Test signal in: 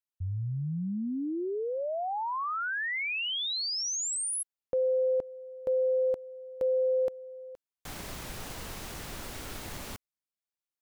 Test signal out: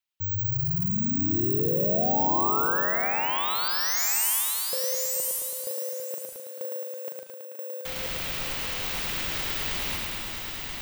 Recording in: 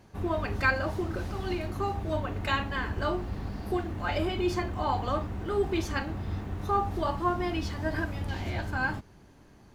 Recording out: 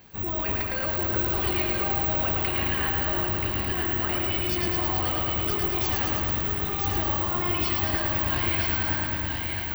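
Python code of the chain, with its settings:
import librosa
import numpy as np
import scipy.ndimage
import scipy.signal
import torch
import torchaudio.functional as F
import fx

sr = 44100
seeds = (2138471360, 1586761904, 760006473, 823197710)

y = fx.peak_eq(x, sr, hz=2900.0, db=10.5, octaves=1.9)
y = fx.over_compress(y, sr, threshold_db=-30.0, ratio=-1.0)
y = fx.echo_feedback(y, sr, ms=980, feedback_pct=20, wet_db=-4)
y = (np.kron(scipy.signal.resample_poly(y, 1, 2), np.eye(2)[0]) * 2)[:len(y)]
y = fx.echo_crushed(y, sr, ms=109, feedback_pct=80, bits=8, wet_db=-3.0)
y = y * librosa.db_to_amplitude(-3.0)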